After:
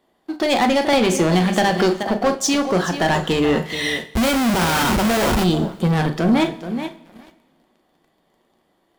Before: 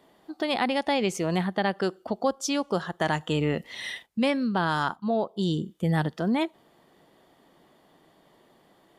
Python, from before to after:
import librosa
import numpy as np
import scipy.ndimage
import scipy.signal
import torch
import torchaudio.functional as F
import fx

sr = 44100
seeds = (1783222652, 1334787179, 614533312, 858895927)

y = fx.low_shelf(x, sr, hz=69.0, db=7.5)
y = fx.hum_notches(y, sr, base_hz=50, count=4)
y = fx.doubler(y, sr, ms=38.0, db=-13.0)
y = fx.echo_feedback(y, sr, ms=428, feedback_pct=19, wet_db=-14.0)
y = fx.leveller(y, sr, passes=3)
y = fx.schmitt(y, sr, flips_db=-34.0, at=(4.07, 5.44))
y = fx.rev_double_slope(y, sr, seeds[0], early_s=0.34, late_s=1.9, knee_db=-18, drr_db=7.5)
y = fx.band_squash(y, sr, depth_pct=100, at=(0.93, 2.03))